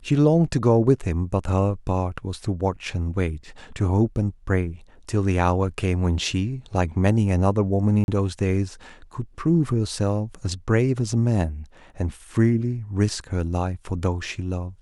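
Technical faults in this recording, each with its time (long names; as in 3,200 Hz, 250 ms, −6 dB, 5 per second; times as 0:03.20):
0:08.04–0:08.08: drop-out 41 ms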